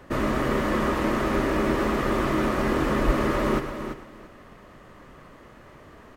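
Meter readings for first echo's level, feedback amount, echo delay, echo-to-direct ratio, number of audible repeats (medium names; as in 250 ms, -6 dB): -12.5 dB, no regular repeats, 115 ms, -7.0 dB, 4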